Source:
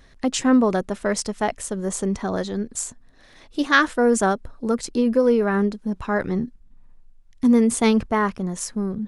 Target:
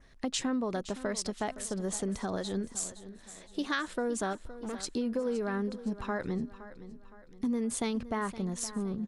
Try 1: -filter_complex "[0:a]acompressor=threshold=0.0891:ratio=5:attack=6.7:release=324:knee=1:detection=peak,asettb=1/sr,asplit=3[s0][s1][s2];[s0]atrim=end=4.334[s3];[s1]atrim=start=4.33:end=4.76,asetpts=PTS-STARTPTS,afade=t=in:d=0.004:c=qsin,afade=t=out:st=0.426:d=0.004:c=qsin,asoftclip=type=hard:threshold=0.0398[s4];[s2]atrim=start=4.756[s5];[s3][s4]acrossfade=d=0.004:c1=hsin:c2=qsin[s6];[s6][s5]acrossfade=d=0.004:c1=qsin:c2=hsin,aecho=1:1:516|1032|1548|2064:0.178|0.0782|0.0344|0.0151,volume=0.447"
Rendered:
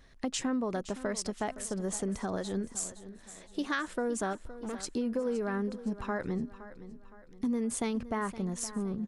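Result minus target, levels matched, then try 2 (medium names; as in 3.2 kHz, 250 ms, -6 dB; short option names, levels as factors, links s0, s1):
4 kHz band -3.0 dB
-filter_complex "[0:a]acompressor=threshold=0.0891:ratio=5:attack=6.7:release=324:knee=1:detection=peak,adynamicequalizer=threshold=0.00282:dfrequency=3900:dqfactor=2.2:tfrequency=3900:tqfactor=2.2:attack=5:release=100:ratio=0.417:range=2.5:mode=boostabove:tftype=bell,asettb=1/sr,asplit=3[s0][s1][s2];[s0]atrim=end=4.334[s3];[s1]atrim=start=4.33:end=4.76,asetpts=PTS-STARTPTS,afade=t=in:d=0.004:c=qsin,afade=t=out:st=0.426:d=0.004:c=qsin,asoftclip=type=hard:threshold=0.0398[s4];[s2]atrim=start=4.756[s5];[s3][s4]acrossfade=d=0.004:c1=hsin:c2=qsin[s6];[s6][s5]acrossfade=d=0.004:c1=qsin:c2=hsin,aecho=1:1:516|1032|1548|2064:0.178|0.0782|0.0344|0.0151,volume=0.447"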